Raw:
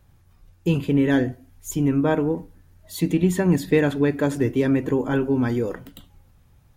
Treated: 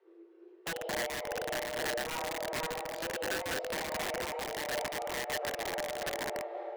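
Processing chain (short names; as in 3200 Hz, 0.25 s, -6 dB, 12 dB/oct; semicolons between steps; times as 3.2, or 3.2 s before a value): block floating point 5-bit; diffused feedback echo 0.556 s, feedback 43%, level -7 dB; reverb RT60 0.85 s, pre-delay 5 ms, DRR -1.5 dB; compressor 10:1, threshold -22 dBFS, peak gain reduction 15.5 dB; LPF 2500 Hz 12 dB/oct; frequency shift +330 Hz; wrapped overs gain 20 dB; noise-modulated level, depth 50%; gain -7 dB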